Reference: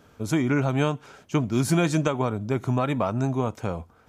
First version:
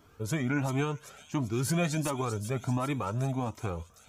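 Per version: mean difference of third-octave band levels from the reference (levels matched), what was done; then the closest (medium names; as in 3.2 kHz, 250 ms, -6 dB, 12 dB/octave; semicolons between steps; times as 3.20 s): 4.5 dB: treble shelf 12 kHz +6 dB; peak limiter -15 dBFS, peak gain reduction 4 dB; feedback echo behind a high-pass 389 ms, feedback 54%, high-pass 4.8 kHz, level -4 dB; Shepard-style flanger rising 1.4 Hz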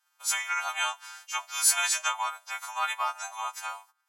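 18.5 dB: partials quantised in pitch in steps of 2 st; steep high-pass 800 Hz 48 dB/octave; gate -53 dBFS, range -20 dB; treble shelf 10 kHz +4.5 dB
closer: first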